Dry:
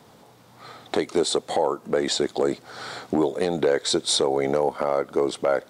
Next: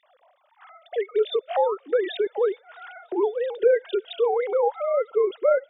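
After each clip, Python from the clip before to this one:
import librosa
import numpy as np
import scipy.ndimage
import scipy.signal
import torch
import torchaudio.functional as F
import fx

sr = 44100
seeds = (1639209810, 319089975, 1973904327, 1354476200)

y = fx.sine_speech(x, sr)
y = fx.echo_wet_highpass(y, sr, ms=316, feedback_pct=59, hz=2200.0, wet_db=-22)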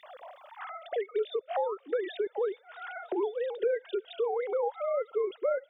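y = fx.band_squash(x, sr, depth_pct=70)
y = F.gain(torch.from_numpy(y), -8.0).numpy()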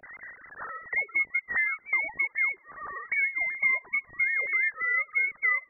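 y = fx.freq_invert(x, sr, carrier_hz=2600)
y = F.gain(torch.from_numpy(y), 3.0).numpy()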